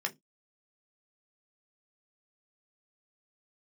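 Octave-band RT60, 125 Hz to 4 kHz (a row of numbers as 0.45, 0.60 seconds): 0.25, 0.25, 0.20, 0.15, 0.15, 0.15 seconds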